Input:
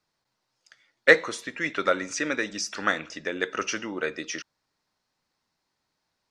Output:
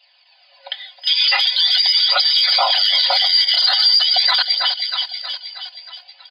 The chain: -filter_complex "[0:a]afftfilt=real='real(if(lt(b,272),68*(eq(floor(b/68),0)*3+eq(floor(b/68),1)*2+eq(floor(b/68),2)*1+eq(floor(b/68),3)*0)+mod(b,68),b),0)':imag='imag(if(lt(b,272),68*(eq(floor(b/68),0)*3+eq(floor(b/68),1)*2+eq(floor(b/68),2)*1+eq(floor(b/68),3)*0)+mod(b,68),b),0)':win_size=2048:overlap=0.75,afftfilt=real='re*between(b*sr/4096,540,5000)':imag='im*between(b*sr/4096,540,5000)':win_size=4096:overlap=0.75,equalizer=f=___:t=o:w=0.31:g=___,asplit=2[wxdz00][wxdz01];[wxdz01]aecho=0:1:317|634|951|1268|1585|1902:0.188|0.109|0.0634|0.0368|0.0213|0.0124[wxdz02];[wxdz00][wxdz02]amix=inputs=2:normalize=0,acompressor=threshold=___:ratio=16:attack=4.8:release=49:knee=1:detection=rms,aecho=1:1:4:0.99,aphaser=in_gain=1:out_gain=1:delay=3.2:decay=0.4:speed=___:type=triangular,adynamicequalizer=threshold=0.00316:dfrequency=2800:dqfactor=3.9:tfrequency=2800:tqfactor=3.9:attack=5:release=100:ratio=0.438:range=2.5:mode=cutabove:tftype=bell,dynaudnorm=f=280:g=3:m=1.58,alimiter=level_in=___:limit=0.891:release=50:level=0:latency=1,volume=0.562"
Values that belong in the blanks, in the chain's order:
1.2k, -12.5, 0.0178, 0.42, 22.4